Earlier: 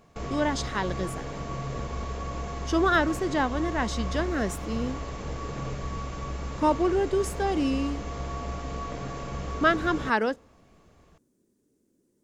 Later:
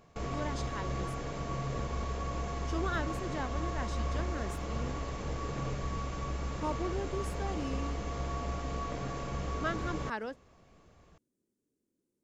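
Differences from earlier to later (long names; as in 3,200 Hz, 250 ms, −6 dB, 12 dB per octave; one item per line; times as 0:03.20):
speech −11.0 dB
reverb: off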